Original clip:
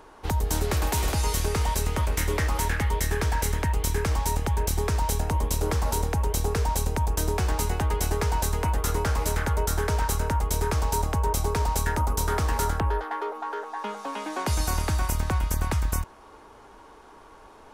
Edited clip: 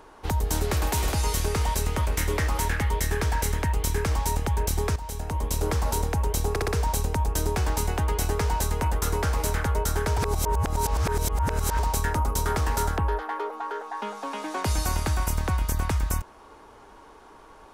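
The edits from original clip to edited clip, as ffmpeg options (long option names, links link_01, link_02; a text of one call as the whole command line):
ffmpeg -i in.wav -filter_complex "[0:a]asplit=7[link_01][link_02][link_03][link_04][link_05][link_06][link_07];[link_01]atrim=end=4.96,asetpts=PTS-STARTPTS,afade=type=out:start_time=4.956:duration=0.004:curve=hsin:silence=0.211349[link_08];[link_02]atrim=start=4.96:end=6.562,asetpts=PTS-STARTPTS,afade=type=in:duration=0.65:silence=0.211349[link_09];[link_03]atrim=start=6.498:end=6.562[link_10];[link_04]atrim=start=6.498:end=6.562[link_11];[link_05]atrim=start=6.498:end=10.002[link_12];[link_06]atrim=start=9.998:end=11.612,asetpts=PTS-STARTPTS,areverse[link_13];[link_07]atrim=start=11.608[link_14];[link_08][link_09]concat=n=2:v=0:a=1[link_15];[link_15][link_10]acrossfade=duration=0.004:curve1=hsin:curve2=hsin[link_16];[link_16][link_11]acrossfade=duration=0.004:curve1=hsin:curve2=hsin[link_17];[link_17][link_12]acrossfade=duration=0.004:curve1=hsin:curve2=hsin[link_18];[link_18][link_13]acrossfade=duration=0.004:curve1=hsin:curve2=hsin[link_19];[link_19][link_14]acrossfade=duration=0.004:curve1=hsin:curve2=hsin" out.wav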